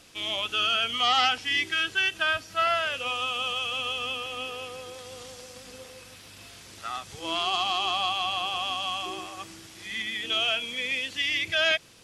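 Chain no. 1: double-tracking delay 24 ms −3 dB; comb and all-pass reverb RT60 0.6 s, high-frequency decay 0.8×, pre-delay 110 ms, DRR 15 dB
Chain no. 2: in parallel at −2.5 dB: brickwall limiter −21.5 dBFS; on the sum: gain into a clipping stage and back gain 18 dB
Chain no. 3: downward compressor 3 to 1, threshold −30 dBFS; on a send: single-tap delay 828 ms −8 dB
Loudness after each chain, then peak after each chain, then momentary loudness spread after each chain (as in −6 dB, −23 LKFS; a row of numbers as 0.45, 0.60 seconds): −24.5, −24.0, −31.5 LKFS; −8.0, −18.0, −18.0 dBFS; 20, 17, 11 LU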